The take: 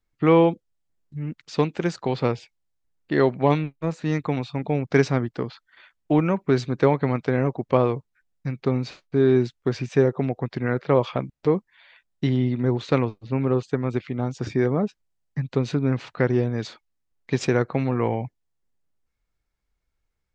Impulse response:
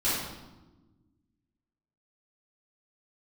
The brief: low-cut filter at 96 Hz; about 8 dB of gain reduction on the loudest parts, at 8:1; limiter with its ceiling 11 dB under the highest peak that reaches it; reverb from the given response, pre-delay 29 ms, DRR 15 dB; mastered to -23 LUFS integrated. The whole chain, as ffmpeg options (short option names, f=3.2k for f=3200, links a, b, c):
-filter_complex "[0:a]highpass=96,acompressor=threshold=-21dB:ratio=8,alimiter=limit=-20dB:level=0:latency=1,asplit=2[a][b];[1:a]atrim=start_sample=2205,adelay=29[c];[b][c]afir=irnorm=-1:irlink=0,volume=-26dB[d];[a][d]amix=inputs=2:normalize=0,volume=8.5dB"